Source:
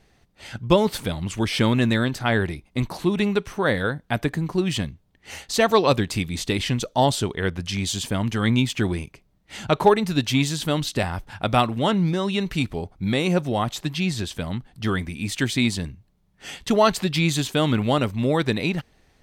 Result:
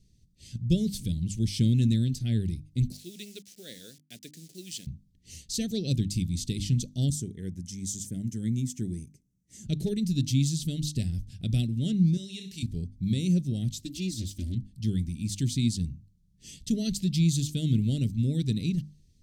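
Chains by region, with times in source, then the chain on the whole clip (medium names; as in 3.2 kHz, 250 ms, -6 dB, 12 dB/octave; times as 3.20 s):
2.92–4.87 s: send-on-delta sampling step -36.5 dBFS + high-pass 620 Hz
7.10–9.67 s: high-pass 260 Hz 6 dB/octave + high-order bell 3.4 kHz -12 dB 1.2 oct
12.17–12.63 s: high-pass 1 kHz 6 dB/octave + doubling 26 ms -7 dB + flutter echo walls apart 10.9 m, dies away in 0.38 s
13.79–14.55 s: comb filter that takes the minimum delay 3.3 ms + high-pass 43 Hz
whole clip: Chebyshev band-stop 170–6100 Hz, order 2; treble shelf 7.9 kHz -9.5 dB; hum notches 50/100/150/200/250/300 Hz; trim +1 dB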